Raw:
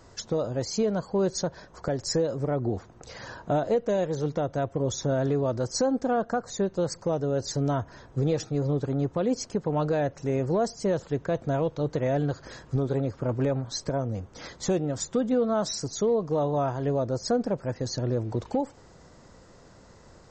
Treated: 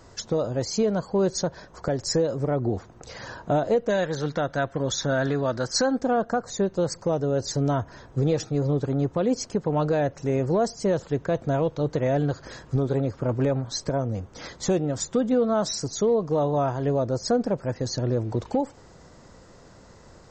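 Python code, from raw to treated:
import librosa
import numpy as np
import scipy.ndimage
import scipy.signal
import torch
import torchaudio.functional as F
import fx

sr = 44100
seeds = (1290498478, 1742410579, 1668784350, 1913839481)

y = fx.graphic_eq_15(x, sr, hz=(100, 400, 1600, 4000), db=(-7, -4, 10, 7), at=(3.9, 5.98))
y = F.gain(torch.from_numpy(y), 2.5).numpy()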